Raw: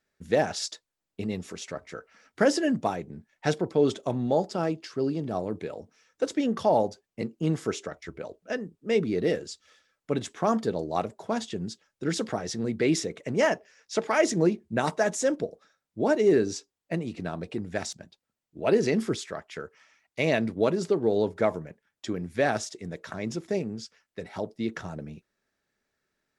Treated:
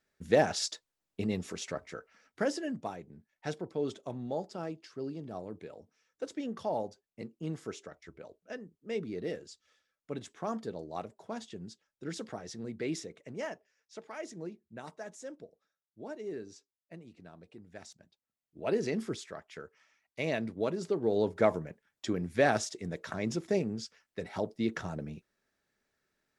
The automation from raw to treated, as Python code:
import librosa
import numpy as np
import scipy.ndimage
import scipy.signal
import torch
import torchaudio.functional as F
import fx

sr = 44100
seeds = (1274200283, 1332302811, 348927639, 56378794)

y = fx.gain(x, sr, db=fx.line((1.72, -1.0), (2.63, -11.0), (12.92, -11.0), (13.97, -19.0), (17.62, -19.0), (18.6, -8.0), (20.79, -8.0), (21.46, -1.0)))